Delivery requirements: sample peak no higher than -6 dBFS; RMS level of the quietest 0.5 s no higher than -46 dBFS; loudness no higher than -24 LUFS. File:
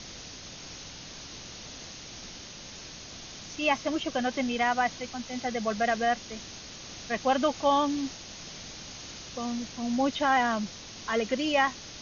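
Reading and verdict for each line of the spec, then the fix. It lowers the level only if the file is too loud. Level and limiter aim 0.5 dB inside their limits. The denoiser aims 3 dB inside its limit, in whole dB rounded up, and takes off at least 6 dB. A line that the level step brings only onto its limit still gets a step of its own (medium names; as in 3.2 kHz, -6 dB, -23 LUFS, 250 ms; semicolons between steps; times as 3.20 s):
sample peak -13.0 dBFS: pass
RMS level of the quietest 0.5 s -44 dBFS: fail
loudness -29.0 LUFS: pass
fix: noise reduction 6 dB, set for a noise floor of -44 dBFS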